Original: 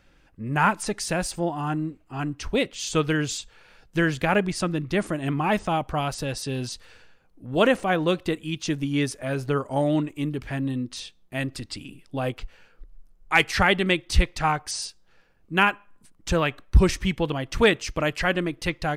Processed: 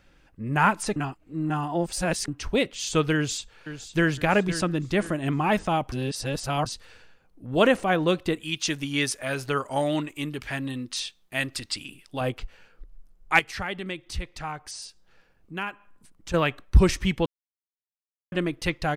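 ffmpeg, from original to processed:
-filter_complex "[0:a]asplit=2[a][b];[b]afade=t=in:st=3.15:d=0.01,afade=t=out:st=4.1:d=0.01,aecho=0:1:510|1020|1530|2040:0.266073|0.106429|0.0425716|0.0170286[c];[a][c]amix=inputs=2:normalize=0,asettb=1/sr,asplit=3[d][e][f];[d]atrim=end=8.404[g];[e]atrim=start=8.4:end=12.21,asetpts=PTS-STARTPTS,afade=t=in:d=0.004:c=qsin,afade=t=out:st=3.806:d=0.004:c=qsin,tiltshelf=f=760:g=-6[h];[f]atrim=start=12.206[i];[g][h]acrossfade=d=0.004:c1=hsin:c2=qsin[j];[j][i]acrossfade=d=0.004:c1=qsin:c2=hsin,asettb=1/sr,asplit=3[k][l][m];[k]atrim=end=13.394[n];[l]atrim=start=13.39:end=16.34,asetpts=PTS-STARTPTS,afade=t=in:d=0.004:c=qsin,afade=t=out:st=2.946:d=0.004:c=qsin,acompressor=threshold=-49dB:ratio=1.5:attack=3.2:release=140:knee=1:detection=peak[o];[m]atrim=start=16.336[p];[n][o]acrossfade=d=0.004:c1=hsin:c2=qsin[q];[q][p]acrossfade=d=0.004:c1=qsin:c2=hsin,asplit=7[r][s][t][u][v][w][x];[r]atrim=end=0.962[y];[s]atrim=start=0.958:end=2.282,asetpts=PTS-STARTPTS,areverse[z];[t]atrim=start=2.278:end=5.922[aa];[u]atrim=start=5.918:end=6.662,asetpts=PTS-STARTPTS,areverse[ab];[v]atrim=start=6.658:end=17.26,asetpts=PTS-STARTPTS,afade=t=out:st=10.598:d=0.004:c=hsin[ac];[w]atrim=start=17.26:end=18.32,asetpts=PTS-STARTPTS,volume=0[ad];[x]atrim=start=18.32,asetpts=PTS-STARTPTS,afade=t=in:d=0.004:c=hsin[ae];[y][z]acrossfade=d=0.004:c1=hsin:c2=hsin[af];[af][aa]acrossfade=d=0.004:c1=hsin:c2=hsin[ag];[ag][ab]acrossfade=d=0.004:c1=hsin:c2=hsin[ah];[ac][ad][ae]concat=n=3:v=0:a=1[ai];[ah][ai]acrossfade=d=0.004:c1=hsin:c2=hsin"

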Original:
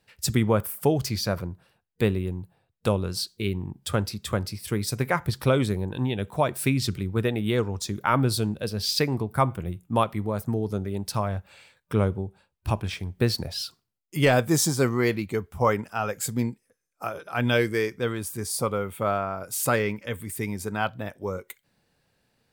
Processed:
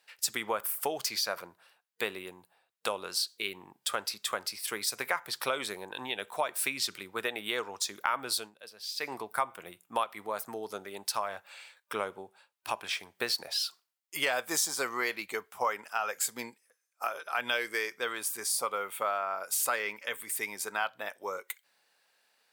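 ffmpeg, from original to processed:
-filter_complex "[0:a]asplit=3[a][b][c];[a]atrim=end=8.51,asetpts=PTS-STARTPTS,afade=t=out:st=8.37:d=0.14:silence=0.188365[d];[b]atrim=start=8.51:end=8.98,asetpts=PTS-STARTPTS,volume=-14.5dB[e];[c]atrim=start=8.98,asetpts=PTS-STARTPTS,afade=t=in:d=0.14:silence=0.188365[f];[d][e][f]concat=n=3:v=0:a=1,highpass=820,acompressor=threshold=-31dB:ratio=3,volume=3dB"

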